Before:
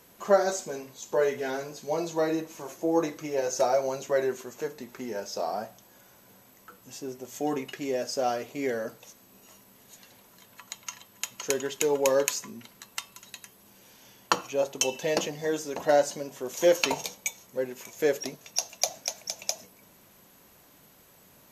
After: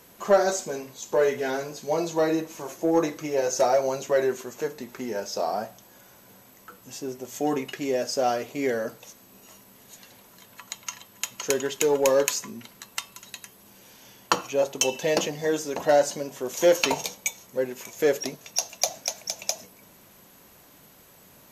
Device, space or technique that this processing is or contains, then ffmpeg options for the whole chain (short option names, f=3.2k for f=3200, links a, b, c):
parallel distortion: -filter_complex "[0:a]asplit=2[a][b];[b]asoftclip=type=hard:threshold=-21dB,volume=-5.5dB[c];[a][c]amix=inputs=2:normalize=0"